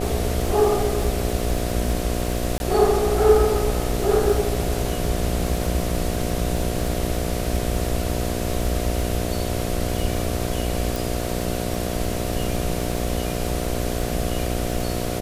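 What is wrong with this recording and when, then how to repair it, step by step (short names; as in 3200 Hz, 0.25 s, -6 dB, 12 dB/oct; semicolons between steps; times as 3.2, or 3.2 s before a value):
buzz 60 Hz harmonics 12 -27 dBFS
crackle 30/s -27 dBFS
2.58–2.6 gap 21 ms
10.96 pop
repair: de-click; de-hum 60 Hz, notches 12; interpolate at 2.58, 21 ms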